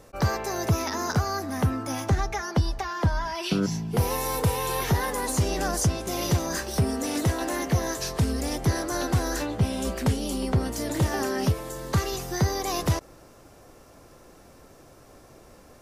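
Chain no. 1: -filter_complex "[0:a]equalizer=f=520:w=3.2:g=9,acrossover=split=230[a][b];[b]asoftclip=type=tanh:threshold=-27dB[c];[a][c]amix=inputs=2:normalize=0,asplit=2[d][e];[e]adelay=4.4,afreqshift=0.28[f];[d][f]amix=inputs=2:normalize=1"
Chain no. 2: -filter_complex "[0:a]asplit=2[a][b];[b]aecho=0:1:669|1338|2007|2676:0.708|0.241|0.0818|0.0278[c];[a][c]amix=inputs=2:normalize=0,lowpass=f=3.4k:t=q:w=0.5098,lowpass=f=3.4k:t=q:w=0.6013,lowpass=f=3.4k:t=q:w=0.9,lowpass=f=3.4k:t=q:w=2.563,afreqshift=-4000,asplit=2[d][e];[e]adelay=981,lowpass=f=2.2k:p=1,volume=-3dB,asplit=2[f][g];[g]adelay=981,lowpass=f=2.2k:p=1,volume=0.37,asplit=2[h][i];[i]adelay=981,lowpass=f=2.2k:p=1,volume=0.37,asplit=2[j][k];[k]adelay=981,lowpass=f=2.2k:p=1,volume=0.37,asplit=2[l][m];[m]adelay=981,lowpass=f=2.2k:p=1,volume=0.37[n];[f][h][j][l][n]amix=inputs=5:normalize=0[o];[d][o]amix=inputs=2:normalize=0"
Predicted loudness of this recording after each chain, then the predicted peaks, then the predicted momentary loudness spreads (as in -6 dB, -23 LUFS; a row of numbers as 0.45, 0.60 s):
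-30.5, -21.0 LUFS; -13.5, -10.0 dBFS; 3, 7 LU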